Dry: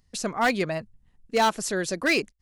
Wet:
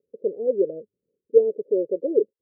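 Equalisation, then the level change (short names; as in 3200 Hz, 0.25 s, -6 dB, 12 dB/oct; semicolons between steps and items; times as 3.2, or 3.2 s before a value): resonant high-pass 440 Hz, resonance Q 4.9; rippled Chebyshev low-pass 570 Hz, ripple 3 dB; 0.0 dB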